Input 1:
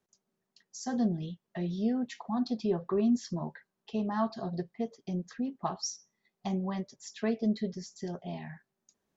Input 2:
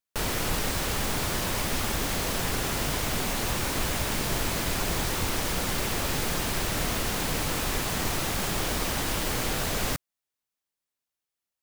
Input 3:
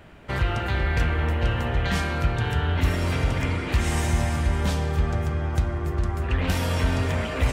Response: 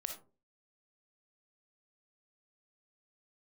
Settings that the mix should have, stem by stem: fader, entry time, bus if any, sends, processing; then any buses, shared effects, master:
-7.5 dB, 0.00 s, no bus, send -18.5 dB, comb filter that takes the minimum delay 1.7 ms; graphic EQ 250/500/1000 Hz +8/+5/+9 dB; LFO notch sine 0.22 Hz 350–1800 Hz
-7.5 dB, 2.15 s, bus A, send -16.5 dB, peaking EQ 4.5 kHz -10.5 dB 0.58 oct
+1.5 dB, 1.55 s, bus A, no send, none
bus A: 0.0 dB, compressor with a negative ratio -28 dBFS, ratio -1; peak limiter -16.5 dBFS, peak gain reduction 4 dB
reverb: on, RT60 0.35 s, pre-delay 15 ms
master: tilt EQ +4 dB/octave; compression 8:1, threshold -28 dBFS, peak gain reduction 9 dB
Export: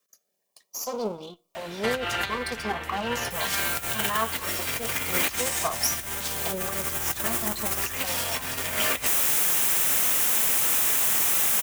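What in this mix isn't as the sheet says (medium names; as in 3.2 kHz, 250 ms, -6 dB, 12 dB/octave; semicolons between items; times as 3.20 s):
stem 1 -7.5 dB -> 0.0 dB; stem 2: entry 2.15 s -> 3.15 s; master: missing compression 8:1, threshold -28 dBFS, peak gain reduction 9 dB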